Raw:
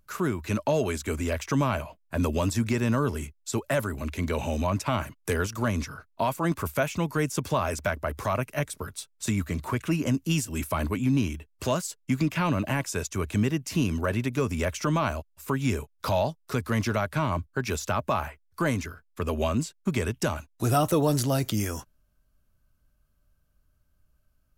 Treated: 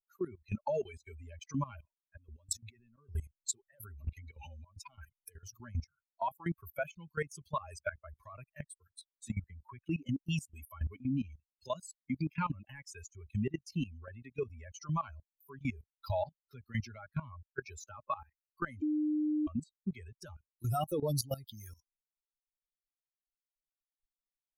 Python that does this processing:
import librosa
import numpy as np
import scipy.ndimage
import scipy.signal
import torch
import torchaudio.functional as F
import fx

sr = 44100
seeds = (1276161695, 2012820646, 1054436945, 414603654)

y = fx.over_compress(x, sr, threshold_db=-31.0, ratio=-1.0, at=(2.14, 5.57))
y = fx.edit(y, sr, fx.bleep(start_s=18.82, length_s=0.65, hz=303.0, db=-16.0), tone=tone)
y = fx.bin_expand(y, sr, power=3.0)
y = fx.level_steps(y, sr, step_db=17)
y = F.gain(torch.from_numpy(y), 2.5).numpy()